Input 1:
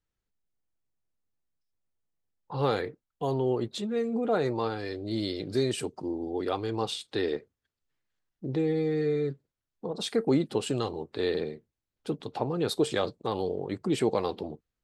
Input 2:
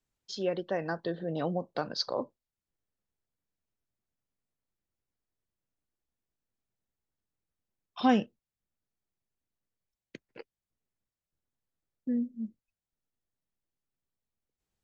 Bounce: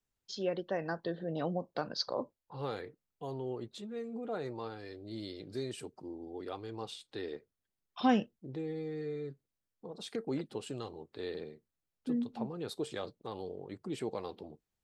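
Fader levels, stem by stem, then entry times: -11.5, -3.0 dB; 0.00, 0.00 s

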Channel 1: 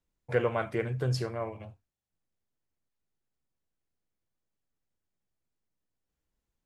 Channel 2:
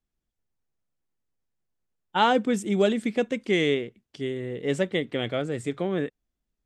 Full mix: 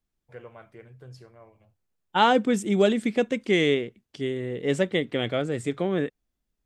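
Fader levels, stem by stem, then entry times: -16.5, +1.5 dB; 0.00, 0.00 s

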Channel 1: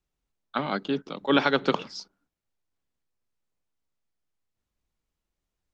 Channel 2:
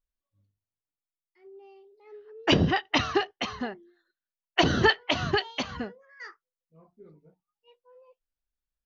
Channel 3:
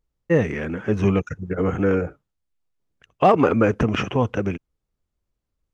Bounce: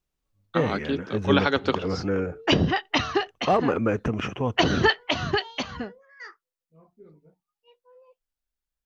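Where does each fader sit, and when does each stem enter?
0.0, +1.0, -6.0 dB; 0.00, 0.00, 0.25 s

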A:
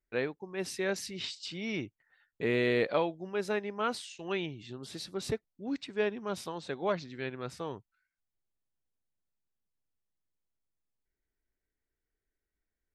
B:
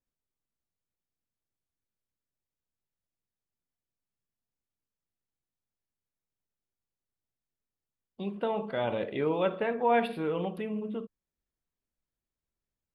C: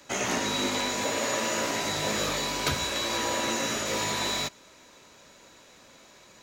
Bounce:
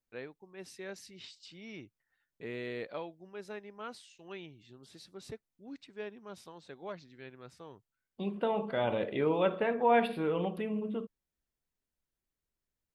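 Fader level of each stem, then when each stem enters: -11.5 dB, -0.5 dB, off; 0.00 s, 0.00 s, off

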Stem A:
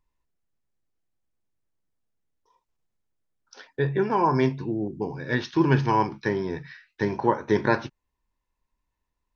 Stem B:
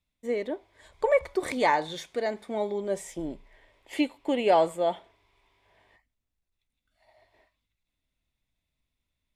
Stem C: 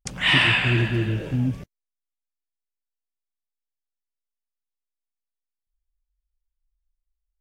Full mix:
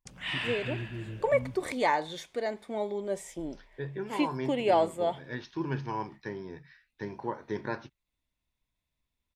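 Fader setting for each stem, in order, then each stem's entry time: -12.5, -3.0, -15.5 dB; 0.00, 0.20, 0.00 s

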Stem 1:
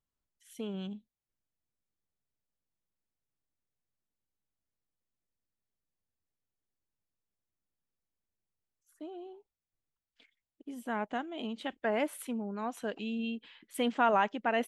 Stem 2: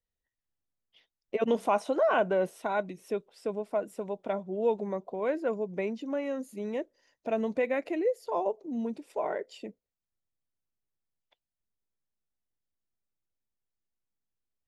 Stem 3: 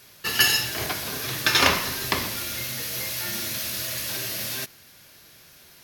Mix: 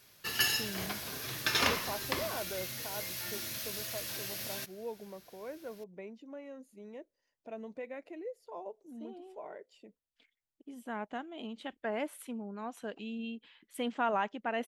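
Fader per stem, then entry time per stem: -4.5, -14.0, -10.0 dB; 0.00, 0.20, 0.00 s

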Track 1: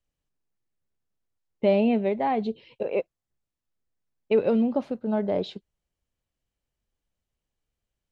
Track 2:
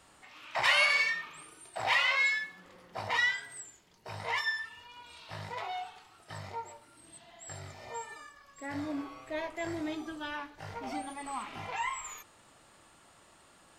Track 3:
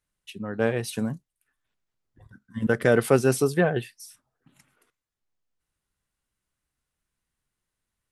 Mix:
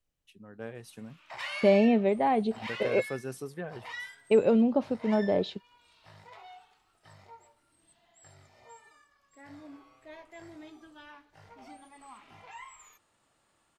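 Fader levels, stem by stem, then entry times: -0.5, -12.0, -17.0 dB; 0.00, 0.75, 0.00 s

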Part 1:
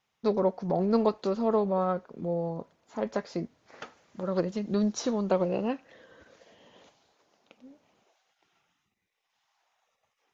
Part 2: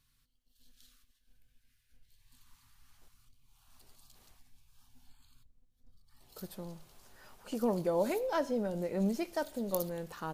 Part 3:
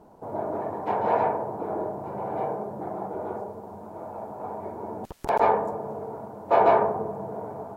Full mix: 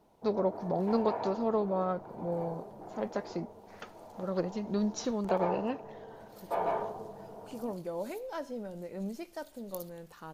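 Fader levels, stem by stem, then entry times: -4.0, -6.5, -13.0 dB; 0.00, 0.00, 0.00 s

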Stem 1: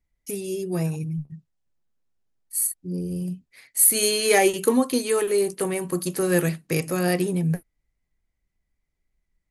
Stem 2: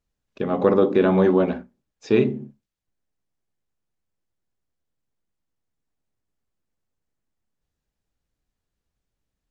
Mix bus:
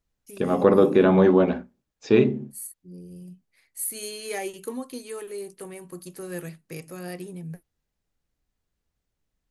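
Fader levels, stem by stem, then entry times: -13.5, +0.5 dB; 0.00, 0.00 s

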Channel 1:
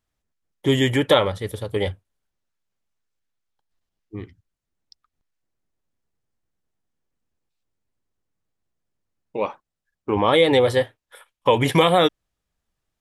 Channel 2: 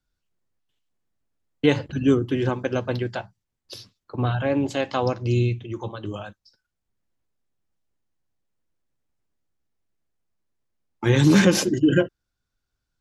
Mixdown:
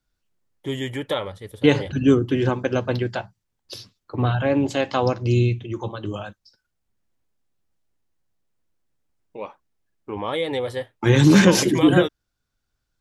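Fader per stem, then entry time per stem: -9.0, +2.5 dB; 0.00, 0.00 s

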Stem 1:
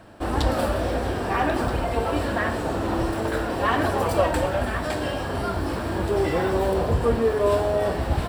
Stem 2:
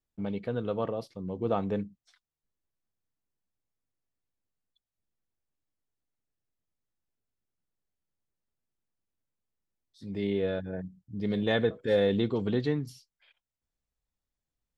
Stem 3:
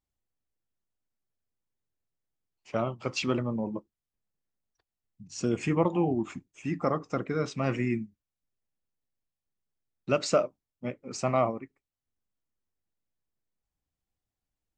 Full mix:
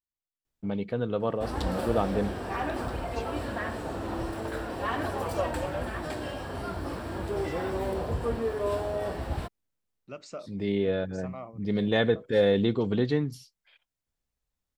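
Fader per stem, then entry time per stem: -8.5, +2.5, -16.0 dB; 1.20, 0.45, 0.00 s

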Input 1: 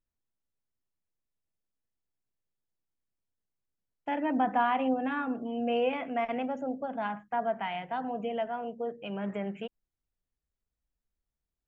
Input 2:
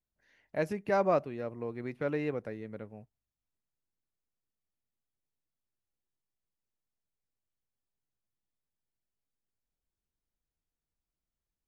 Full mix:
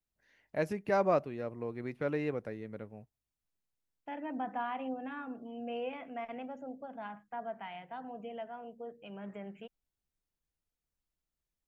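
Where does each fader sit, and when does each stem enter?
-10.0, -1.0 dB; 0.00, 0.00 s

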